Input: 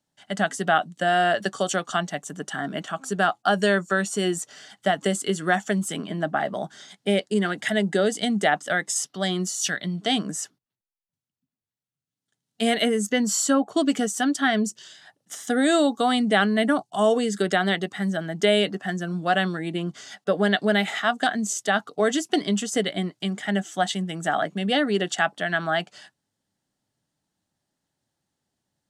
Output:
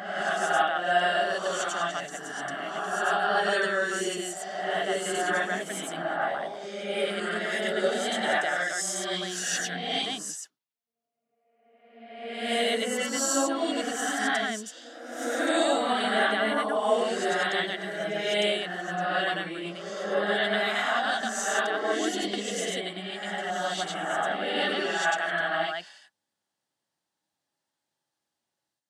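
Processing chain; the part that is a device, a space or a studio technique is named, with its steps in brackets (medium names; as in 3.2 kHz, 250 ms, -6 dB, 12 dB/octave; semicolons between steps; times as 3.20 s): ghost voice (reverse; reverberation RT60 1.5 s, pre-delay 87 ms, DRR -8 dB; reverse; high-pass 690 Hz 6 dB/octave); trim -8.5 dB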